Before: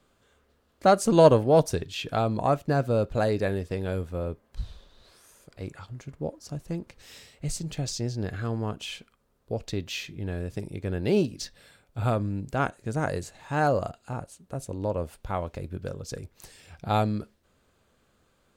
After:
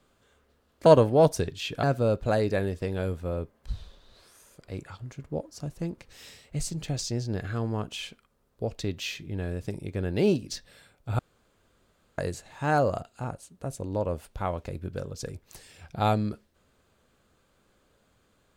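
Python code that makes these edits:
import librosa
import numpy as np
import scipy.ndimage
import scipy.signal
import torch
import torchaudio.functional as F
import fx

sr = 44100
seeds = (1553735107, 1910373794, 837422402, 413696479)

y = fx.edit(x, sr, fx.cut(start_s=0.86, length_s=0.34),
    fx.cut(start_s=2.17, length_s=0.55),
    fx.room_tone_fill(start_s=12.08, length_s=0.99), tone=tone)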